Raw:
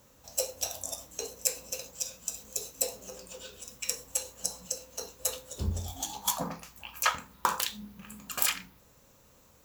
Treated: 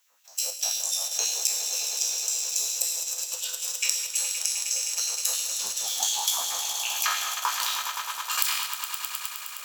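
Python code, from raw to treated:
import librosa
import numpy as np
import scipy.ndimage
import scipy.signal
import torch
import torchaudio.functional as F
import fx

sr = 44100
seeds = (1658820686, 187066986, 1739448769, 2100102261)

p1 = fx.spec_trails(x, sr, decay_s=0.71)
p2 = fx.recorder_agc(p1, sr, target_db=-8.5, rise_db_per_s=13.0, max_gain_db=30)
p3 = fx.filter_lfo_highpass(p2, sr, shape='sine', hz=5.6, low_hz=820.0, high_hz=2800.0, q=1.4)
p4 = p3 + fx.echo_swell(p3, sr, ms=104, loudest=5, wet_db=-12.0, dry=0)
p5 = fx.dynamic_eq(p4, sr, hz=4500.0, q=1.0, threshold_db=-35.0, ratio=4.0, max_db=6)
p6 = fx.level_steps(p5, sr, step_db=13)
p7 = p5 + (p6 * librosa.db_to_amplitude(-0.5))
y = p7 * librosa.db_to_amplitude(-10.5)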